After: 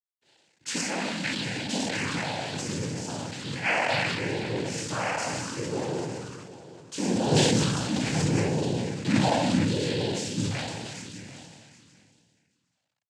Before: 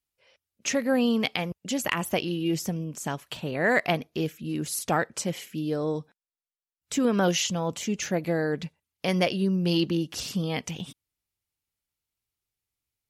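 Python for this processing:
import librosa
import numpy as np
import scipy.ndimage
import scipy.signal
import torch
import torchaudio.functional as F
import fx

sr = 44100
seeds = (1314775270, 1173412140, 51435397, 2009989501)

y = fx.spec_trails(x, sr, decay_s=2.27)
y = fx.low_shelf(y, sr, hz=370.0, db=8.5, at=(7.31, 9.66))
y = fx.quant_companded(y, sr, bits=4)
y = fx.phaser_stages(y, sr, stages=12, low_hz=360.0, high_hz=1600.0, hz=0.72, feedback_pct=25)
y = fx.noise_vocoder(y, sr, seeds[0], bands=8)
y = y + 10.0 ** (-16.0 / 20.0) * np.pad(y, (int(760 * sr / 1000.0), 0))[:len(y)]
y = fx.sustainer(y, sr, db_per_s=29.0)
y = F.gain(torch.from_numpy(y), -4.0).numpy()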